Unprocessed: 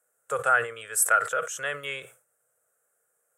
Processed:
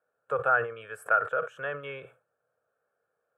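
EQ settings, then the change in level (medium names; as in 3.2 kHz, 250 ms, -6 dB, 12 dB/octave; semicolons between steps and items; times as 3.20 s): dynamic bell 4.3 kHz, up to -7 dB, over -41 dBFS, Q 0.77; Butterworth band-stop 2 kHz, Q 6.5; distance through air 490 m; +2.0 dB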